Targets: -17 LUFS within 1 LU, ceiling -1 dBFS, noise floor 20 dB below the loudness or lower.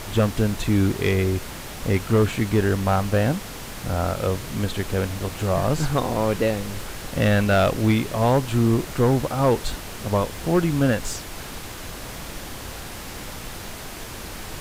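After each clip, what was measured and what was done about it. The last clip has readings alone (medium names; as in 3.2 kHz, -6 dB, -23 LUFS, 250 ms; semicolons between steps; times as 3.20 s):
clipped samples 0.4%; clipping level -10.5 dBFS; noise floor -36 dBFS; noise floor target -43 dBFS; loudness -22.5 LUFS; peak level -10.5 dBFS; loudness target -17.0 LUFS
-> clip repair -10.5 dBFS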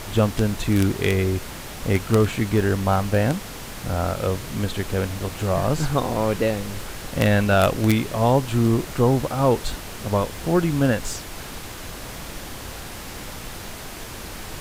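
clipped samples 0.0%; noise floor -36 dBFS; noise floor target -43 dBFS
-> noise print and reduce 7 dB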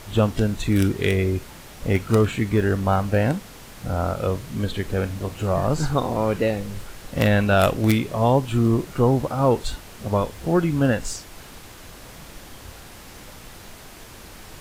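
noise floor -43 dBFS; loudness -22.5 LUFS; peak level -1.5 dBFS; loudness target -17.0 LUFS
-> trim +5.5 dB; peak limiter -1 dBFS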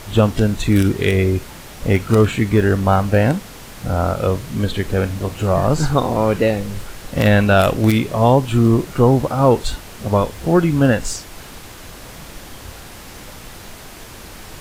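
loudness -17.0 LUFS; peak level -1.0 dBFS; noise floor -37 dBFS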